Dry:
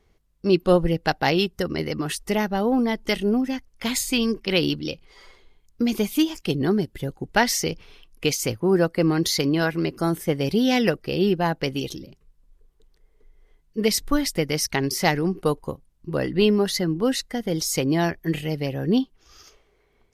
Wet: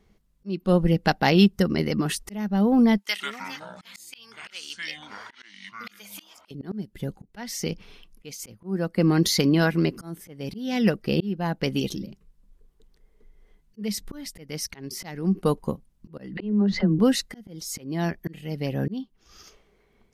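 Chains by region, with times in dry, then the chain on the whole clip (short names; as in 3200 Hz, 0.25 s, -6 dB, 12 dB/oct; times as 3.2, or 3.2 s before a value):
2.98–6.51 HPF 1400 Hz + echoes that change speed 86 ms, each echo -7 st, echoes 3, each echo -6 dB
16.37–16.99 tape spacing loss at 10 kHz 39 dB + dispersion lows, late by 41 ms, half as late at 420 Hz + backwards sustainer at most 46 dB/s
whole clip: bell 200 Hz +12 dB 0.41 oct; auto swell 0.534 s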